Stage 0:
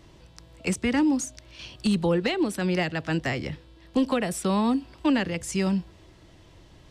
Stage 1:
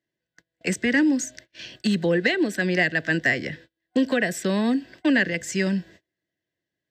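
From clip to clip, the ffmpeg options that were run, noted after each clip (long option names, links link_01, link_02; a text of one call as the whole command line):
ffmpeg -i in.wav -af "highpass=170,agate=range=-33dB:threshold=-48dB:ratio=16:detection=peak,superequalizer=9b=0.355:10b=0.398:11b=2.82:16b=0.251,volume=2.5dB" out.wav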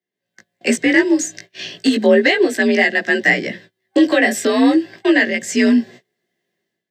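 ffmpeg -i in.wav -af "afreqshift=50,flanger=delay=16.5:depth=2.1:speed=0.34,dynaudnorm=framelen=110:gausssize=5:maxgain=13.5dB" out.wav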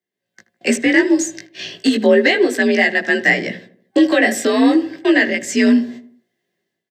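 ffmpeg -i in.wav -filter_complex "[0:a]asplit=2[link_01][link_02];[link_02]adelay=79,lowpass=frequency=1400:poles=1,volume=-13.5dB,asplit=2[link_03][link_04];[link_04]adelay=79,lowpass=frequency=1400:poles=1,volume=0.48,asplit=2[link_05][link_06];[link_06]adelay=79,lowpass=frequency=1400:poles=1,volume=0.48,asplit=2[link_07][link_08];[link_08]adelay=79,lowpass=frequency=1400:poles=1,volume=0.48,asplit=2[link_09][link_10];[link_10]adelay=79,lowpass=frequency=1400:poles=1,volume=0.48[link_11];[link_01][link_03][link_05][link_07][link_09][link_11]amix=inputs=6:normalize=0" out.wav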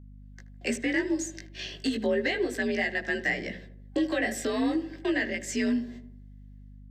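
ffmpeg -i in.wav -af "acompressor=threshold=-28dB:ratio=1.5,aeval=exprs='val(0)+0.0112*(sin(2*PI*50*n/s)+sin(2*PI*2*50*n/s)/2+sin(2*PI*3*50*n/s)/3+sin(2*PI*4*50*n/s)/4+sin(2*PI*5*50*n/s)/5)':channel_layout=same,volume=-7.5dB" out.wav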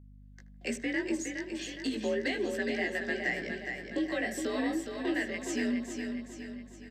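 ffmpeg -i in.wav -af "aecho=1:1:415|830|1245|1660|2075|2490:0.501|0.246|0.12|0.059|0.0289|0.0142,volume=-5dB" out.wav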